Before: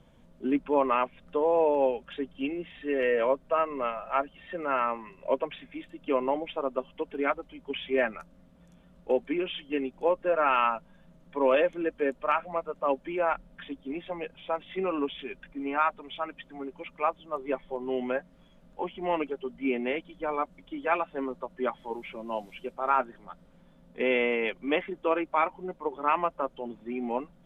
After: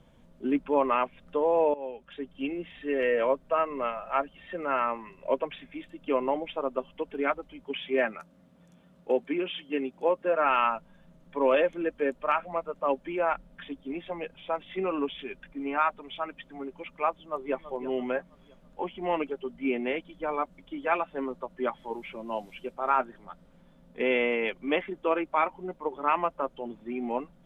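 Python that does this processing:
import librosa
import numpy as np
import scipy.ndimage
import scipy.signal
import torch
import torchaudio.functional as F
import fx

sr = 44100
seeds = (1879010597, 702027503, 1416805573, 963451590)

y = fx.highpass(x, sr, hz=110.0, slope=12, at=(7.63, 10.45))
y = fx.echo_throw(y, sr, start_s=17.24, length_s=0.43, ms=330, feedback_pct=40, wet_db=-13.0)
y = fx.edit(y, sr, fx.fade_in_from(start_s=1.74, length_s=0.78, floor_db=-17.5), tone=tone)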